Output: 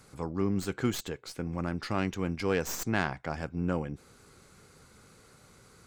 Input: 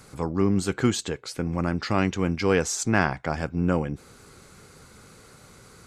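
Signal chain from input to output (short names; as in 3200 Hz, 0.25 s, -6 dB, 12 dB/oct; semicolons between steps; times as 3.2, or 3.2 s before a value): tracing distortion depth 0.062 ms; gain -7 dB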